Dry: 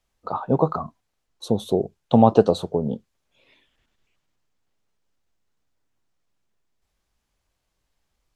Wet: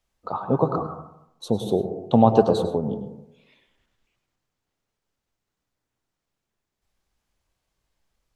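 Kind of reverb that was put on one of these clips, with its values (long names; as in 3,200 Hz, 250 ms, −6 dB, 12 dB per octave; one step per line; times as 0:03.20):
dense smooth reverb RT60 0.79 s, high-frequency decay 0.25×, pre-delay 90 ms, DRR 8 dB
level −1.5 dB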